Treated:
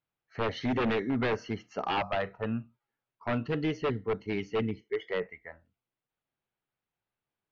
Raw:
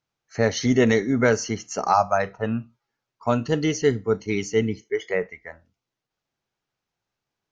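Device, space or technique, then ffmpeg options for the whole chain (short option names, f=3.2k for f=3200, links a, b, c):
synthesiser wavefolder: -af "aeval=exprs='0.158*(abs(mod(val(0)/0.158+3,4)-2)-1)':c=same,lowpass=f=3.6k:w=0.5412,lowpass=f=3.6k:w=1.3066,volume=-6.5dB"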